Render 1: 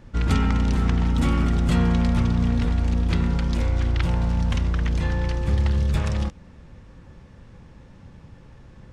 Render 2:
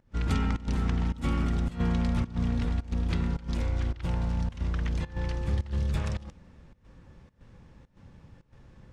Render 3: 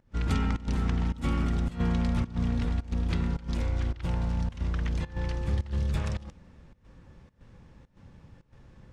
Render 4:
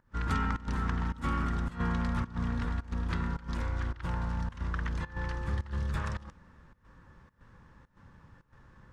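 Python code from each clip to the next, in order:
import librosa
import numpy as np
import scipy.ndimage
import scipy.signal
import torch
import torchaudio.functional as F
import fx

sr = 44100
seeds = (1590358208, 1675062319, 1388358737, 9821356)

y1 = fx.volume_shaper(x, sr, bpm=107, per_beat=1, depth_db=-18, release_ms=115.0, shape='slow start')
y1 = y1 * librosa.db_to_amplitude(-6.5)
y2 = y1
y3 = fx.band_shelf(y2, sr, hz=1300.0, db=9.5, octaves=1.2)
y3 = y3 * librosa.db_to_amplitude(-4.5)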